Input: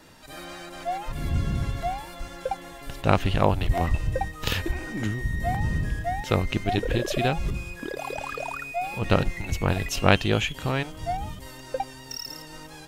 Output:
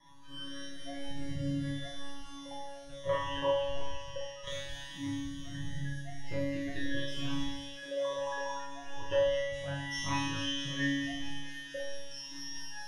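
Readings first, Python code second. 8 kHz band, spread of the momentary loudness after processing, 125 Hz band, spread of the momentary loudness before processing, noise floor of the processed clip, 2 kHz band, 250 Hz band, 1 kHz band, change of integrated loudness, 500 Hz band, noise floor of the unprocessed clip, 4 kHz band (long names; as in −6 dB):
−6.5 dB, 12 LU, −14.0 dB, 13 LU, −46 dBFS, −8.5 dB, −7.5 dB, −12.5 dB, −9.0 dB, −6.0 dB, −43 dBFS, −4.5 dB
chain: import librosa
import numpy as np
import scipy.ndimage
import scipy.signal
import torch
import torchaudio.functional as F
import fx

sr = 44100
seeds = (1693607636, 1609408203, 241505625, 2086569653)

y = fx.dereverb_blind(x, sr, rt60_s=0.97)
y = fx.ripple_eq(y, sr, per_octave=1.2, db=15)
y = fx.rider(y, sr, range_db=4, speed_s=2.0)
y = fx.comb_fb(y, sr, f0_hz=140.0, decay_s=1.2, harmonics='all', damping=0.0, mix_pct=100)
y = fx.phaser_stages(y, sr, stages=12, low_hz=200.0, high_hz=1100.0, hz=0.2, feedback_pct=25)
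y = fx.air_absorb(y, sr, metres=58.0)
y = fx.echo_wet_highpass(y, sr, ms=219, feedback_pct=76, hz=3100.0, wet_db=-4.0)
y = fx.rev_schroeder(y, sr, rt60_s=0.43, comb_ms=25, drr_db=1.0)
y = F.gain(torch.from_numpy(y), 8.0).numpy()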